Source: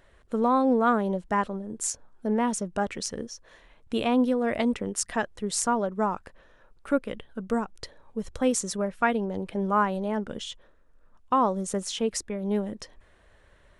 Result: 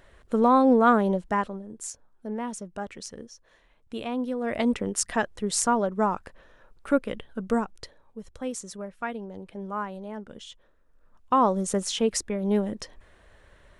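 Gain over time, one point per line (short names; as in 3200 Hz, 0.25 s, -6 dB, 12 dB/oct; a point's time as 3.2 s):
1.1 s +3.5 dB
1.85 s -7 dB
4.23 s -7 dB
4.71 s +2 dB
7.59 s +2 dB
8.2 s -8.5 dB
10.31 s -8.5 dB
11.51 s +3 dB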